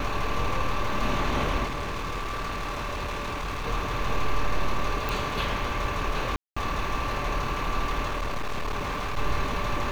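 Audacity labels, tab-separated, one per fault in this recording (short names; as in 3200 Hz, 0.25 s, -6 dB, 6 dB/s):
1.650000	3.670000	clipped -28 dBFS
5.090000	5.090000	pop
6.360000	6.570000	gap 0.205 s
8.070000	9.180000	clipped -25.5 dBFS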